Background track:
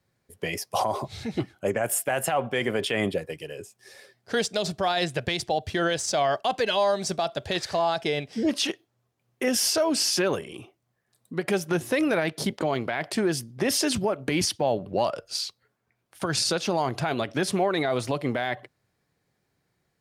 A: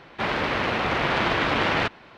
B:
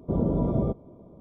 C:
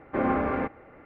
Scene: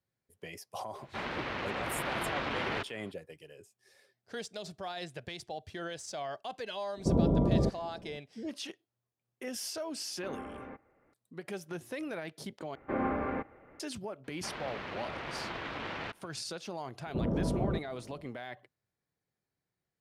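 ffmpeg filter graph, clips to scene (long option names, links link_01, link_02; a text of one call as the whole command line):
ffmpeg -i bed.wav -i cue0.wav -i cue1.wav -i cue2.wav -filter_complex "[1:a]asplit=2[link_01][link_02];[2:a]asplit=2[link_03][link_04];[3:a]asplit=2[link_05][link_06];[0:a]volume=-15dB[link_07];[link_04]asoftclip=type=tanh:threshold=-19.5dB[link_08];[link_07]asplit=2[link_09][link_10];[link_09]atrim=end=12.754[link_11];[link_06]atrim=end=1.05,asetpts=PTS-STARTPTS,volume=-6.5dB[link_12];[link_10]atrim=start=13.796[link_13];[link_01]atrim=end=2.17,asetpts=PTS-STARTPTS,volume=-12dB,afade=type=in:duration=0.004:curve=hsin,afade=type=out:start_time=2.166:duration=0.004:curve=hsin,adelay=950[link_14];[link_03]atrim=end=1.2,asetpts=PTS-STARTPTS,volume=-1.5dB,afade=type=in:duration=0.004:curve=hsin,afade=type=out:start_time=1.196:duration=0.004:curve=hsin,adelay=6970[link_15];[link_05]atrim=end=1.05,asetpts=PTS-STARTPTS,volume=-18dB,afade=type=in:duration=0.004:curve=hsin,afade=type=out:start_time=1.046:duration=0.004:curve=hsin,adelay=10090[link_16];[link_02]atrim=end=2.17,asetpts=PTS-STARTPTS,volume=-16.5dB,afade=type=in:duration=0.004:curve=hsin,afade=type=out:start_time=2.166:duration=0.004:curve=hsin,adelay=14240[link_17];[link_08]atrim=end=1.2,asetpts=PTS-STARTPTS,volume=-4.5dB,afade=type=in:duration=0.004:curve=hsin,afade=type=out:start_time=1.196:duration=0.004:curve=hsin,adelay=17060[link_18];[link_11][link_12]acrossfade=duration=0.004:curve1=hsin:curve2=hsin[link_19];[link_19][link_13]acrossfade=duration=0.004:curve1=hsin:curve2=hsin[link_20];[link_20][link_14][link_15][link_16][link_17][link_18]amix=inputs=6:normalize=0" out.wav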